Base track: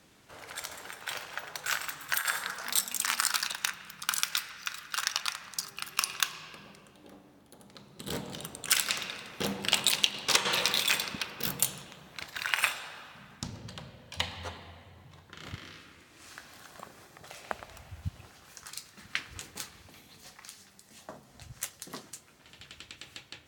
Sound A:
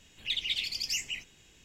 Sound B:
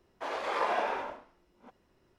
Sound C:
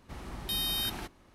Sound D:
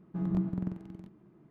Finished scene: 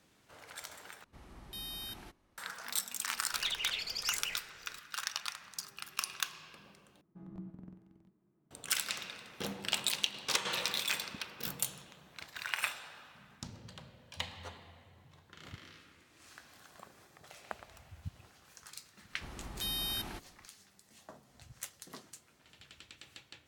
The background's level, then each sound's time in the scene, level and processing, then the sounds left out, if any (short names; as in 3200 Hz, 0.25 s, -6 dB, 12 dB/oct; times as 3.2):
base track -7 dB
1.04 replace with C -11.5 dB
3.15 add A -4.5 dB + band shelf 830 Hz +12.5 dB 2.3 oct
7.01 replace with D -15 dB + notches 60/120/180/240/300/360/420/480/540/600 Hz
19.12 add C -4.5 dB
not used: B